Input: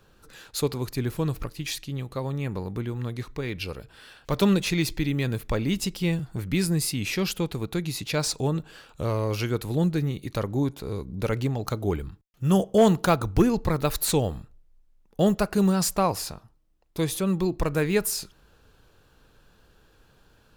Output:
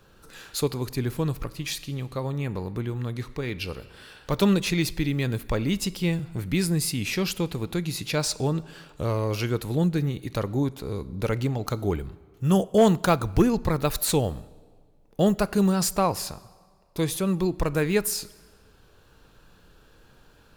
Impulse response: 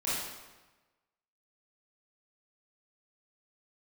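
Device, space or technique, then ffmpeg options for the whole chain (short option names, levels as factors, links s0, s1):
ducked reverb: -filter_complex "[0:a]asplit=3[s0][s1][s2];[1:a]atrim=start_sample=2205[s3];[s1][s3]afir=irnorm=-1:irlink=0[s4];[s2]apad=whole_len=907079[s5];[s4][s5]sidechaincompress=threshold=0.00708:ratio=4:attack=38:release=703,volume=0.355[s6];[s0][s6]amix=inputs=2:normalize=0"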